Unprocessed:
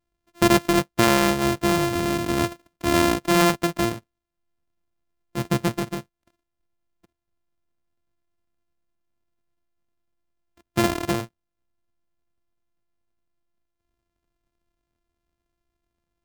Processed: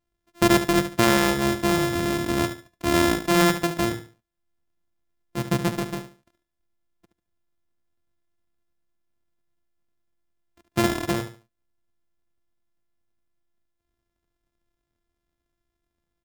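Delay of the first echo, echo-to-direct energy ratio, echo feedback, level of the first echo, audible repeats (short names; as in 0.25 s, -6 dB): 72 ms, -10.0 dB, 27%, -10.5 dB, 3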